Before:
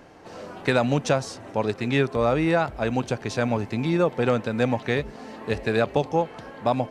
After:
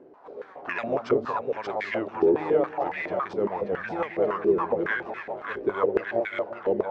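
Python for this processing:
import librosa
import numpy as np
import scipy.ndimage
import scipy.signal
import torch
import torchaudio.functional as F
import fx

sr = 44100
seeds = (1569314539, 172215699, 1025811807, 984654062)

y = fx.pitch_ramps(x, sr, semitones=-7.0, every_ms=784)
y = fx.echo_split(y, sr, split_hz=770.0, low_ms=187, high_ms=582, feedback_pct=52, wet_db=-3.0)
y = fx.filter_held_bandpass(y, sr, hz=7.2, low_hz=380.0, high_hz=2000.0)
y = F.gain(torch.from_numpy(y), 7.0).numpy()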